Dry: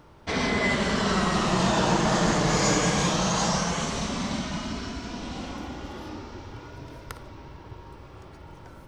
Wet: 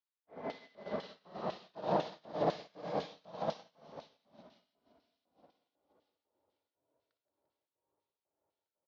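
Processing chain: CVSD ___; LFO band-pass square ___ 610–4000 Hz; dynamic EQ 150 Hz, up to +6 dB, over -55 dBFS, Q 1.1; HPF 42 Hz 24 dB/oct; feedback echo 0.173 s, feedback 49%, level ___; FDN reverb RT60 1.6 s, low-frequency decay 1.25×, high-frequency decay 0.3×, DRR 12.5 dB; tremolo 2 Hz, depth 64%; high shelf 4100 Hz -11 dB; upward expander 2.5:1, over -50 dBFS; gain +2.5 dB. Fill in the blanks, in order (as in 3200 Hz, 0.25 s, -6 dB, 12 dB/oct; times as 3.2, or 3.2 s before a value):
32 kbps, 2 Hz, -8 dB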